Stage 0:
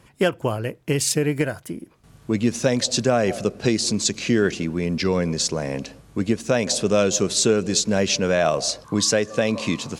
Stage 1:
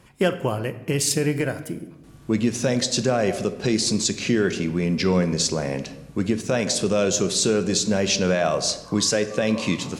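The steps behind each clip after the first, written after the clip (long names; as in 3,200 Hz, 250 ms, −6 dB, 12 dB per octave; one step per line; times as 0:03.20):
brickwall limiter −11 dBFS, peak gain reduction 4.5 dB
on a send at −10 dB: convolution reverb RT60 1.0 s, pre-delay 5 ms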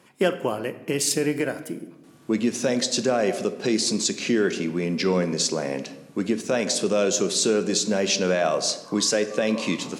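Chebyshev high-pass filter 250 Hz, order 2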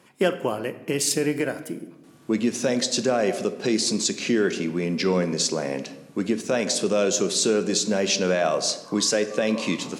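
no processing that can be heard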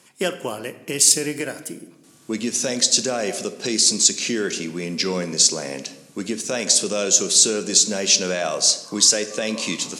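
parametric band 7,800 Hz +14 dB 2.3 octaves
level −3 dB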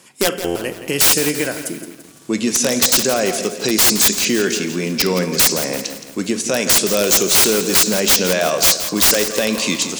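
wrap-around overflow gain 12 dB
buffer that repeats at 0:00.44, samples 512, times 9
feedback echo at a low word length 169 ms, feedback 55%, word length 7 bits, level −11 dB
level +6 dB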